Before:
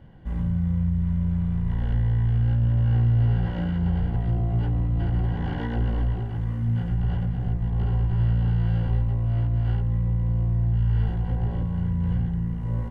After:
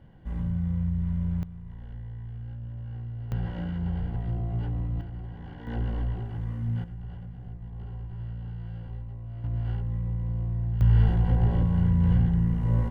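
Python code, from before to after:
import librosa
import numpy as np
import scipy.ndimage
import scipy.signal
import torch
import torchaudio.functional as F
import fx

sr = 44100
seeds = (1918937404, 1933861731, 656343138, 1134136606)

y = fx.gain(x, sr, db=fx.steps((0.0, -4.0), (1.43, -16.5), (3.32, -6.0), (5.01, -14.0), (5.67, -5.0), (6.84, -14.5), (9.44, -6.0), (10.81, 3.0)))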